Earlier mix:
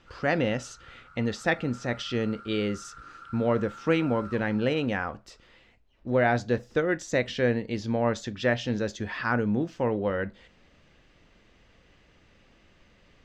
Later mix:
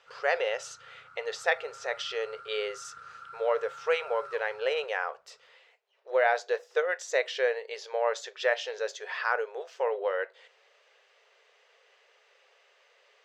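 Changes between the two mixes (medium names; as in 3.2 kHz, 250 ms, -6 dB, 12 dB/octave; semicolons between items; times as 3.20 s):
speech: add brick-wall FIR high-pass 390 Hz; master: add bass shelf 130 Hz -10 dB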